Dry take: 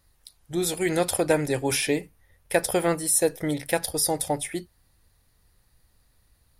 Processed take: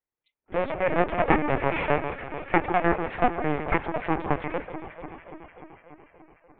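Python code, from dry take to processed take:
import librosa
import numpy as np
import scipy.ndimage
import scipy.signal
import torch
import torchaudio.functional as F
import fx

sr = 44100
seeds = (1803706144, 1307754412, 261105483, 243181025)

p1 = fx.cycle_switch(x, sr, every=2, mode='inverted')
p2 = scipy.signal.sosfilt(scipy.signal.ellip(3, 1.0, 40, [260.0, 2400.0], 'bandpass', fs=sr, output='sos'), p1)
p3 = p2 + fx.echo_alternate(p2, sr, ms=146, hz=1500.0, feedback_pct=83, wet_db=-10, dry=0)
p4 = fx.noise_reduce_blind(p3, sr, reduce_db=26)
p5 = fx.lpc_vocoder(p4, sr, seeds[0], excitation='pitch_kept', order=16)
y = p5 * librosa.db_to_amplitude(2.0)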